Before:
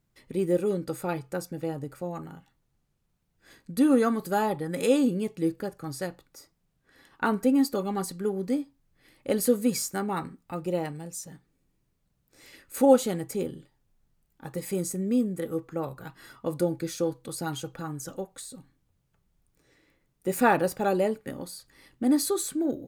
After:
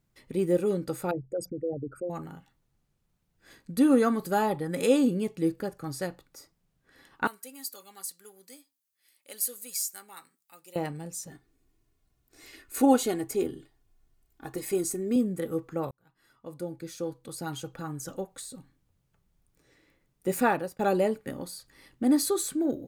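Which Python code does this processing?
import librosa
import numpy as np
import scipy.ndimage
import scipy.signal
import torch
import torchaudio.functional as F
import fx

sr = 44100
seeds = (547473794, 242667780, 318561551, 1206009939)

y = fx.envelope_sharpen(x, sr, power=3.0, at=(1.11, 2.1))
y = fx.differentiator(y, sr, at=(7.27, 10.76))
y = fx.comb(y, sr, ms=2.8, depth=0.63, at=(11.3, 15.16))
y = fx.edit(y, sr, fx.fade_in_span(start_s=15.91, length_s=2.25),
    fx.fade_out_to(start_s=20.32, length_s=0.47, floor_db=-20.5), tone=tone)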